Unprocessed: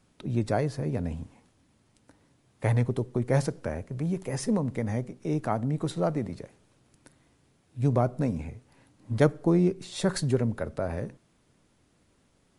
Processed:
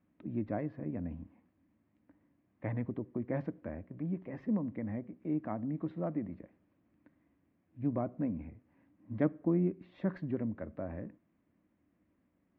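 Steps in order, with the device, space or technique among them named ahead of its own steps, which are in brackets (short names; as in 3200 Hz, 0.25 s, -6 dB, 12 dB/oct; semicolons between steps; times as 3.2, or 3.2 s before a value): bass cabinet (speaker cabinet 64–2100 Hz, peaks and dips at 130 Hz -9 dB, 200 Hz +4 dB, 300 Hz +7 dB, 430 Hz -8 dB, 840 Hz -6 dB, 1400 Hz -7 dB); gain -8 dB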